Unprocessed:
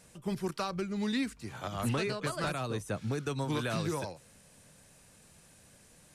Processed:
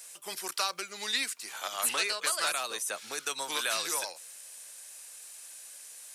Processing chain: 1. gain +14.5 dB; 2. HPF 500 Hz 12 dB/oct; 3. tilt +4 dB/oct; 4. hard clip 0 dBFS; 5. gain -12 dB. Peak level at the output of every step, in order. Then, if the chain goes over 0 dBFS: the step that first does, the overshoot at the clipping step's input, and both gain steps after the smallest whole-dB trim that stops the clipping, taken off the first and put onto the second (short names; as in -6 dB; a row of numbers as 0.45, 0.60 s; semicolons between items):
-9.0, -8.0, -4.0, -4.0, -16.0 dBFS; no overload